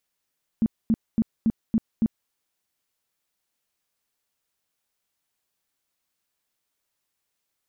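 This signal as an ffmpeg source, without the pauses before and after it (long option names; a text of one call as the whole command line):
ffmpeg -f lavfi -i "aevalsrc='0.15*sin(2*PI*224*mod(t,0.28))*lt(mod(t,0.28),9/224)':duration=1.68:sample_rate=44100" out.wav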